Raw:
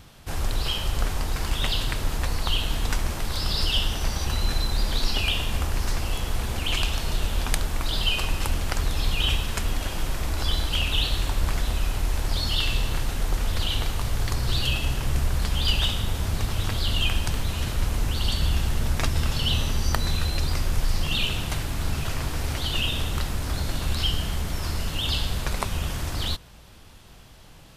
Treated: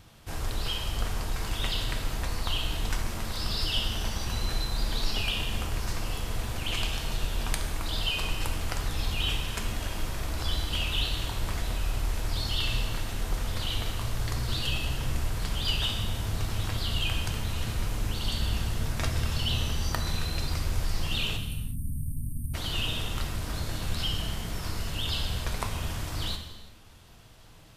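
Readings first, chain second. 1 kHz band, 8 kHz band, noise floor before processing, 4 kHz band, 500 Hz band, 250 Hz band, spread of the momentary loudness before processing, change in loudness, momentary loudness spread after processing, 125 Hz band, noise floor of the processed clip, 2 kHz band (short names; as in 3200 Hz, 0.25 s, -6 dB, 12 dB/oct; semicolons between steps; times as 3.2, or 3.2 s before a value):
-4.5 dB, -4.5 dB, -47 dBFS, -4.5 dB, -4.5 dB, -4.0 dB, 5 LU, -4.5 dB, 5 LU, -4.5 dB, -46 dBFS, -4.0 dB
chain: spectral delete 21.37–22.54, 300–8400 Hz; non-linear reverb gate 0.41 s falling, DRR 4 dB; gain -5.5 dB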